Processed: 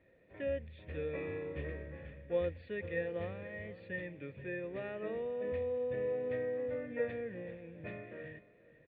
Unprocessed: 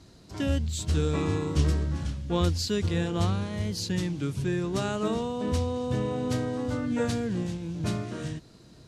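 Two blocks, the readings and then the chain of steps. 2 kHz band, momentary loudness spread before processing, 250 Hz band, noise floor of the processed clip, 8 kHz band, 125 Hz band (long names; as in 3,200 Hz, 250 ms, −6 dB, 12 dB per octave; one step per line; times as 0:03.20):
−4.5 dB, 6 LU, −17.0 dB, −64 dBFS, below −40 dB, −19.5 dB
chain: tilt shelving filter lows −5.5 dB, about 1,300 Hz
on a send: single-tap delay 481 ms −18.5 dB
on the sum: floating-point word with a short mantissa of 4 bits
formant resonators in series e
level +5.5 dB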